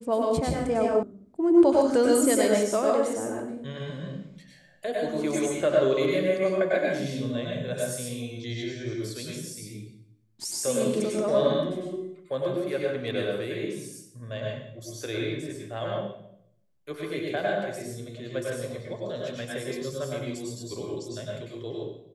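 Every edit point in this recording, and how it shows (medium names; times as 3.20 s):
1.03 s: sound stops dead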